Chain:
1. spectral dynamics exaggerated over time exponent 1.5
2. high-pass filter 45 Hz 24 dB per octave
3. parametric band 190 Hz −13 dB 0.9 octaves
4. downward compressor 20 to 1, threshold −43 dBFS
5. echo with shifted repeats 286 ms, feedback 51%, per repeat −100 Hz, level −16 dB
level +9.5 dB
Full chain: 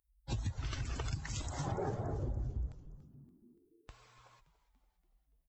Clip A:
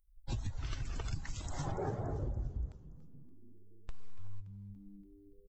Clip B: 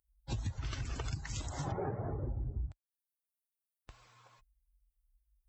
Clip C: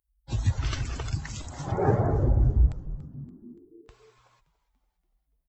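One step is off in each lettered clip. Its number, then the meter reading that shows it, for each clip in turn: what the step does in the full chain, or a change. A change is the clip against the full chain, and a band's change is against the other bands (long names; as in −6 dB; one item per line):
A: 2, 8 kHz band −2.5 dB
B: 5, echo-to-direct ratio −14.5 dB to none audible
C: 4, average gain reduction 9.5 dB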